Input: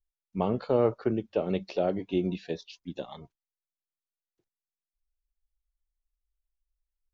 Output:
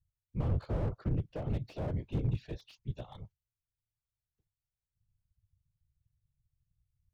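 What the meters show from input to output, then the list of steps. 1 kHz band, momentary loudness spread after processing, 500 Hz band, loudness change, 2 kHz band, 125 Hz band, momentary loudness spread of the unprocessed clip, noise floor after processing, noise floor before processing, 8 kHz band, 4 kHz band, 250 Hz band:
-12.5 dB, 13 LU, -14.5 dB, -6.5 dB, -9.0 dB, +4.0 dB, 15 LU, under -85 dBFS, under -85 dBFS, no reading, -10.5 dB, -9.0 dB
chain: whisper effect; resonant low shelf 170 Hz +13 dB, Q 1.5; slew-rate limiter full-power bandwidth 21 Hz; trim -8.5 dB

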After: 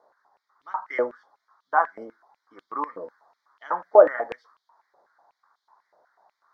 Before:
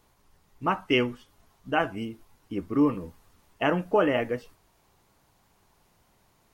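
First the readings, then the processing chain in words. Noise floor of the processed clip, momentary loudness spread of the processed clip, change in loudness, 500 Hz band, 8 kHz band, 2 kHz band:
-81 dBFS, 20 LU, +3.5 dB, +6.0 dB, no reading, -1.5 dB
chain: Butterworth band-stop 2.7 kHz, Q 0.97; distance through air 270 m; step-sequenced high-pass 8.1 Hz 590–3200 Hz; trim +2.5 dB

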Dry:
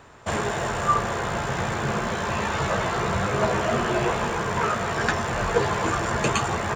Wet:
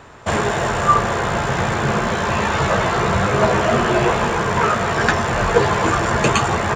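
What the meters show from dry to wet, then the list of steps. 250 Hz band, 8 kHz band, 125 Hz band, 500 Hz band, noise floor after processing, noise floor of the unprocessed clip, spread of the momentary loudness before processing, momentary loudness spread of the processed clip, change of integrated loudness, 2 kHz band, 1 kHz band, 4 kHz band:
+7.0 dB, +5.0 dB, +7.0 dB, +7.0 dB, -22 dBFS, -29 dBFS, 4 LU, 4 LU, +7.0 dB, +7.0 dB, +7.0 dB, +6.5 dB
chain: treble shelf 8.6 kHz -5.5 dB; trim +7 dB

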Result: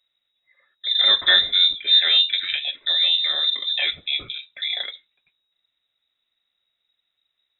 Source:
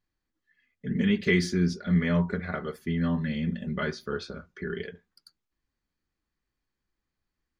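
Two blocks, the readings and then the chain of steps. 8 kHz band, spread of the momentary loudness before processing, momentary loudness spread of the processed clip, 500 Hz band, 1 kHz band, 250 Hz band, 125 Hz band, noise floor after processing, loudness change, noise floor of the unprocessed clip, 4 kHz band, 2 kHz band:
under -30 dB, 13 LU, 13 LU, -8.0 dB, +2.0 dB, under -25 dB, under -25 dB, -78 dBFS, +11.0 dB, under -85 dBFS, +27.5 dB, +7.5 dB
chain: frequency inversion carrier 3.8 kHz; trim +7 dB

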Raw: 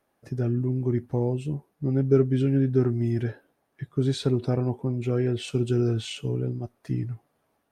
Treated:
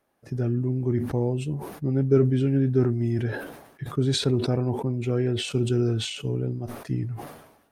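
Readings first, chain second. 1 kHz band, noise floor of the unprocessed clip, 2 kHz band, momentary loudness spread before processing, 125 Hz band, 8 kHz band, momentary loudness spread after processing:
+3.0 dB, -74 dBFS, +4.5 dB, 11 LU, +1.0 dB, +6.0 dB, 12 LU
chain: decay stretcher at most 65 dB/s

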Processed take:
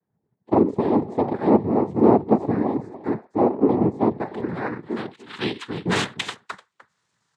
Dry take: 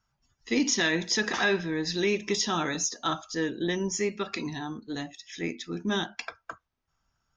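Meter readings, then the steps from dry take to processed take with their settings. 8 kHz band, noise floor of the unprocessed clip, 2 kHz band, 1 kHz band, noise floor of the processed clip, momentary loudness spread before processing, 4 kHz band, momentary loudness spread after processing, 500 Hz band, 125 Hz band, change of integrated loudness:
under -10 dB, -80 dBFS, -3.5 dB, +9.5 dB, -76 dBFS, 12 LU, -3.5 dB, 13 LU, +9.5 dB, +9.0 dB, +6.5 dB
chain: delay 299 ms -17 dB; low-pass sweep 440 Hz -> 4.3 kHz, 3.69–6.53 s; noise-vocoded speech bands 6; trim +5.5 dB

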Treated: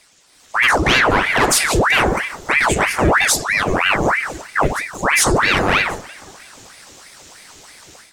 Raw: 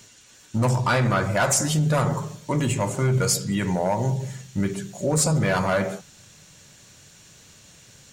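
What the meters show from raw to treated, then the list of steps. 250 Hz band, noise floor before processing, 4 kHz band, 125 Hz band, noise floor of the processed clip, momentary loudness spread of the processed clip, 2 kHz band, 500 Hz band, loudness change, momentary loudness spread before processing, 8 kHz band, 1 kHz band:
+2.0 dB, -52 dBFS, +12.0 dB, -3.5 dB, -51 dBFS, 7 LU, +15.5 dB, +5.0 dB, +7.5 dB, 9 LU, +5.5 dB, +9.5 dB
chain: bucket-brigade echo 179 ms, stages 2048, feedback 59%, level -21 dB; level rider gain up to 11 dB; ring modulator with a swept carrier 1.2 kHz, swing 85%, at 3.1 Hz

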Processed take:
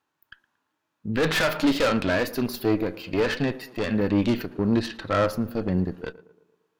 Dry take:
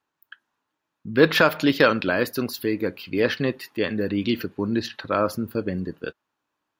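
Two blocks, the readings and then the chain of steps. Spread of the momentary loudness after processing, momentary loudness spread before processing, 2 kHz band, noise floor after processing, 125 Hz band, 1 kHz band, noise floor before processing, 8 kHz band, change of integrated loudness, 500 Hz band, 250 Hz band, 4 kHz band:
8 LU, 11 LU, -4.0 dB, -79 dBFS, +2.0 dB, -2.5 dB, -81 dBFS, +1.5 dB, -1.5 dB, -2.5 dB, 0.0 dB, -2.5 dB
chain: valve stage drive 23 dB, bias 0.7; tape echo 113 ms, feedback 59%, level -19 dB, low-pass 1.2 kHz; harmonic-percussive split harmonic +9 dB

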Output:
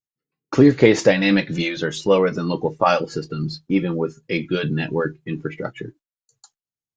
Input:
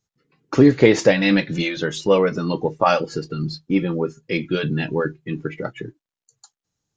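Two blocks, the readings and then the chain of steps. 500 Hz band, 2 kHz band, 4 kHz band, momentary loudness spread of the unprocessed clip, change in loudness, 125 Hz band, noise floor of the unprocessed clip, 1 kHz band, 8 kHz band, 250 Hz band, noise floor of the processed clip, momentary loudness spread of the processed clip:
0.0 dB, 0.0 dB, 0.0 dB, 14 LU, 0.0 dB, 0.0 dB, under -85 dBFS, 0.0 dB, no reading, 0.0 dB, under -85 dBFS, 14 LU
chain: gate with hold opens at -42 dBFS

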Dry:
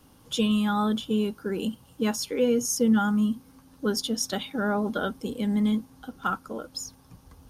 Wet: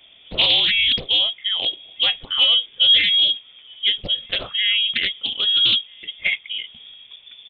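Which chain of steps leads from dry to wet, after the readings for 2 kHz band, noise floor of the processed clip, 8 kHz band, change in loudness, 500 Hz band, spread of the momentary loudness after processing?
+12.5 dB, -49 dBFS, under -25 dB, +10.0 dB, -9.0 dB, 11 LU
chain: echo from a far wall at 220 m, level -28 dB; frequency inversion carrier 3.5 kHz; loudspeaker Doppler distortion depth 0.64 ms; trim +6.5 dB

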